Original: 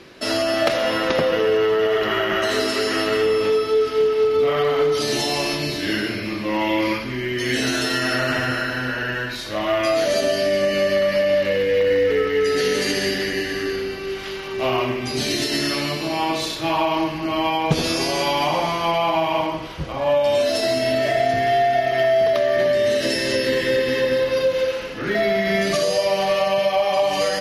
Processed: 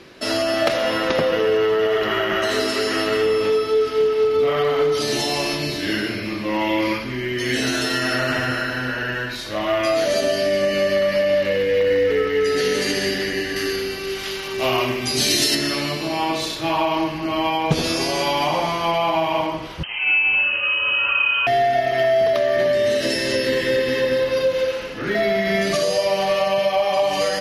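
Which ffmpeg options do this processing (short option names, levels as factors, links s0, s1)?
-filter_complex "[0:a]asettb=1/sr,asplit=3[s0][s1][s2];[s0]atrim=end=13.564[s3];[s1]atrim=start=13.56:end=15.55,asetpts=PTS-STARTPTS,afade=t=in:d=0.004:c=qsin,afade=t=out:st=1.986:d=0.004:c=qsin,highshelf=f=3700:g=11[s4];[s2]atrim=start=15.546[s5];[s3][s4]acrossfade=d=0.004:c1=hsin:c2=qsin[s6];[s6][s5]acrossfade=d=0.004:c1=qsin:c2=hsin,asettb=1/sr,asplit=3[s7][s8][s9];[s7]atrim=end=19.834[s10];[s8]atrim=start=19.83:end=21.47,asetpts=PTS-STARTPTS,afade=t=in:d=0.004:c=qsin,afade=t=out:st=1.636:d=0.004:c=qsin,lowpass=f=2700:t=q:w=0.5098,lowpass=f=2700:t=q:w=0.6013,lowpass=f=2700:t=q:w=0.9,lowpass=f=2700:t=q:w=2.563,afreqshift=-3200[s11];[s9]atrim=start=21.466[s12];[s10][s11]acrossfade=d=0.004:c1=hsin:c2=qsin[s13];[s13][s12]acrossfade=d=0.004:c1=qsin:c2=hsin"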